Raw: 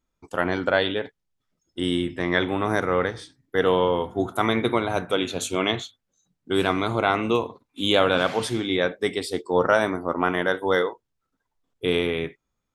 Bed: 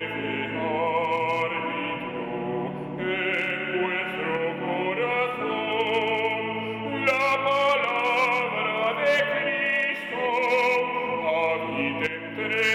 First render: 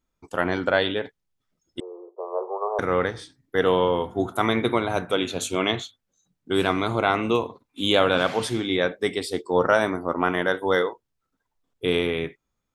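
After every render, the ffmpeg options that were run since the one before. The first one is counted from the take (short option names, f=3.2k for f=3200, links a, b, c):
-filter_complex "[0:a]asettb=1/sr,asplit=3[a][b][c];[a]atrim=end=1.804[d];[b]atrim=start=1.8:end=2.79,asetpts=PTS-STARTPTS,afade=t=in:d=0.004:c=qsin,afade=t=out:st=0.986:d=0.004:c=qsin,asuperpass=centerf=680:order=20:qfactor=0.86[e];[c]atrim=start=2.786[f];[d][e]acrossfade=d=0.004:c1=hsin:c2=qsin[g];[g][f]acrossfade=d=0.004:c1=qsin:c2=hsin"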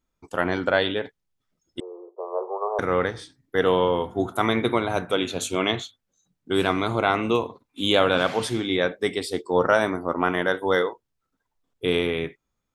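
-af anull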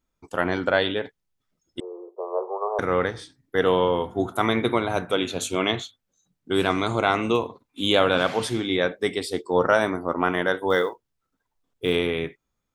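-filter_complex "[0:a]asettb=1/sr,asplit=3[a][b][c];[a]atrim=end=1.844[d];[b]atrim=start=1.84:end=2.41,asetpts=PTS-STARTPTS,afade=t=in:d=0.004:c=qsin,afade=t=out:st=0.566:d=0.004:c=qsin,lowshelf=f=190:g=11.5[e];[c]atrim=start=2.406[f];[d][e]acrossfade=d=0.004:c1=hsin:c2=qsin[g];[g][f]acrossfade=d=0.004:c1=qsin:c2=hsin,asettb=1/sr,asplit=3[h][i][j];[h]atrim=end=6.704[k];[i]atrim=start=6.7:end=7.32,asetpts=PTS-STARTPTS,afade=t=in:d=0.004:c=qsin,afade=t=out:st=0.616:d=0.004:c=qsin,lowpass=f=7.6k:t=q:w=3.1[l];[j]atrim=start=7.316[m];[k][l]acrossfade=d=0.004:c1=hsin:c2=qsin[n];[n][m]acrossfade=d=0.004:c1=qsin:c2=hsin,asettb=1/sr,asplit=3[o][p][q];[o]atrim=end=10.704[r];[p]atrim=start=10.7:end=11.96,asetpts=PTS-STARTPTS,afade=t=in:d=0.004:c=qsin,afade=t=out:st=1.256:d=0.004:c=qsin,acrusher=bits=9:mode=log:mix=0:aa=0.000001[s];[q]atrim=start=11.956[t];[r][s]acrossfade=d=0.004:c1=hsin:c2=qsin[u];[u][t]acrossfade=d=0.004:c1=qsin:c2=hsin"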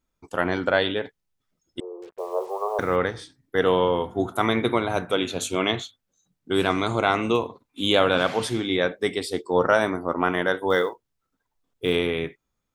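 -filter_complex "[0:a]asettb=1/sr,asplit=3[a][b][c];[a]atrim=end=2.024[d];[b]atrim=start=2.02:end=2.96,asetpts=PTS-STARTPTS,afade=t=in:d=0.004:c=qsin,afade=t=out:st=0.936:d=0.004:c=qsin,acrusher=bits=7:mix=0:aa=0.5[e];[c]atrim=start=2.956[f];[d][e]acrossfade=d=0.004:c1=hsin:c2=qsin[g];[g][f]acrossfade=d=0.004:c1=qsin:c2=hsin"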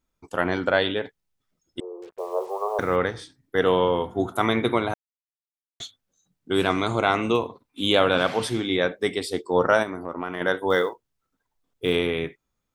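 -filter_complex "[0:a]asettb=1/sr,asplit=3[a][b][c];[a]atrim=end=7.324[d];[b]atrim=start=7.32:end=8.54,asetpts=PTS-STARTPTS,afade=t=in:d=0.004:c=qsin,afade=t=out:st=1.216:d=0.004:c=qsin,bandreject=f=6.8k:w=12[e];[c]atrim=start=8.536[f];[d][e]acrossfade=d=0.004:c1=hsin:c2=qsin[g];[g][f]acrossfade=d=0.004:c1=qsin:c2=hsin,asplit=3[h][i][j];[h]afade=t=out:st=9.82:d=0.02[k];[i]acompressor=threshold=-29dB:ratio=2.5:attack=3.2:release=140:knee=1:detection=peak,afade=t=in:st=9.82:d=0.02,afade=t=out:st=10.4:d=0.02[l];[j]afade=t=in:st=10.4:d=0.02[m];[k][l][m]amix=inputs=3:normalize=0,asplit=3[n][o][p];[n]atrim=end=4.94,asetpts=PTS-STARTPTS,afade=t=out:st=4.936:d=0.004:c=hsin[q];[o]atrim=start=4.94:end=5.8,asetpts=PTS-STARTPTS,volume=0[r];[p]atrim=start=5.8,asetpts=PTS-STARTPTS,afade=t=in:d=0.004:c=hsin[s];[q][r][s]concat=n=3:v=0:a=1"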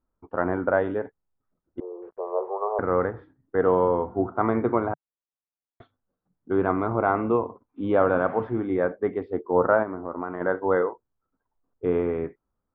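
-af "lowpass=f=1.4k:w=0.5412,lowpass=f=1.4k:w=1.3066,equalizer=f=150:t=o:w=0.39:g=-5"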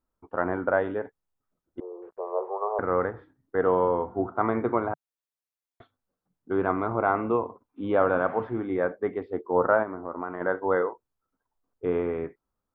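-af "lowshelf=f=480:g=-4.5"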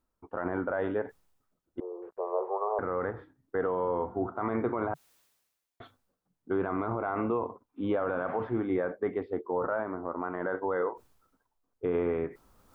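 -af "alimiter=limit=-20dB:level=0:latency=1:release=31,areverse,acompressor=mode=upward:threshold=-43dB:ratio=2.5,areverse"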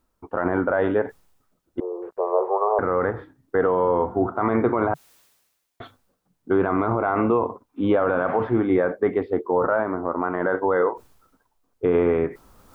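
-af "volume=9.5dB"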